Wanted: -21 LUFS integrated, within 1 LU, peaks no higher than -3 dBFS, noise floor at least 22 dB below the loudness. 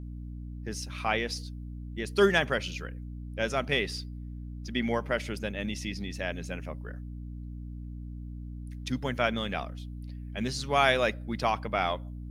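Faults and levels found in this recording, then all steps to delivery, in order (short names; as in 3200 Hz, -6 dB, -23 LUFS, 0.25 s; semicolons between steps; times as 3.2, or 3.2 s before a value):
hum 60 Hz; harmonics up to 300 Hz; hum level -37 dBFS; loudness -30.5 LUFS; peak -9.0 dBFS; loudness target -21.0 LUFS
-> de-hum 60 Hz, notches 5; gain +9.5 dB; limiter -3 dBFS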